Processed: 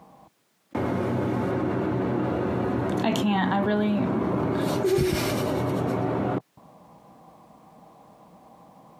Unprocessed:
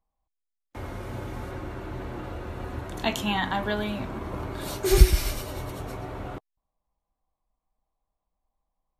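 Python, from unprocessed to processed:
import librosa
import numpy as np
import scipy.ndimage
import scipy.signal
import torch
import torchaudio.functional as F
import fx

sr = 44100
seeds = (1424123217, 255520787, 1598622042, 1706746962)

y = scipy.signal.sosfilt(scipy.signal.butter(4, 150.0, 'highpass', fs=sr, output='sos'), x)
y = fx.tilt_eq(y, sr, slope=-3.0)
y = fx.env_flatten(y, sr, amount_pct=70)
y = y * 10.0 ** (-5.5 / 20.0)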